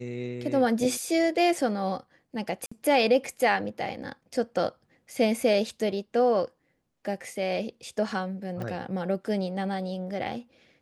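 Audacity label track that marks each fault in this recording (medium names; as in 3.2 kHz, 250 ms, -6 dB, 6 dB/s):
2.660000	2.710000	dropout 55 ms
8.620000	8.620000	pop -24 dBFS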